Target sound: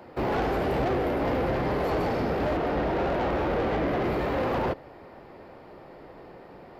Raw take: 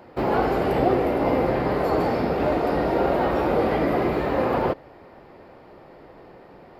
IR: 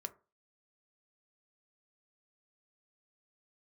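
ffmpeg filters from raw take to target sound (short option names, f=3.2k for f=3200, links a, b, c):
-filter_complex "[0:a]asettb=1/sr,asplit=3[a][b][c];[a]atrim=end=2.564[d];[b]atrim=start=2.56:end=4.04,asetpts=PTS-STARTPTS,afade=t=in:d=0.004:c=qsin,afade=t=out:st=1.476:d=0.004:c=qsin,acrossover=split=4000[e][f];[f]acompressor=threshold=-58dB:ratio=4:attack=1:release=60[g];[e][g]amix=inputs=2:normalize=0[h];[c]atrim=start=4.036[i];[d][h]acrossfade=d=0.004:c1=hsin:c2=qsin[j];[j][i]acrossfade=d=0.004:c1=qsin:c2=hsin,acrossover=split=120[k][l];[l]asoftclip=type=tanh:threshold=-23.5dB[m];[k][m]amix=inputs=2:normalize=0"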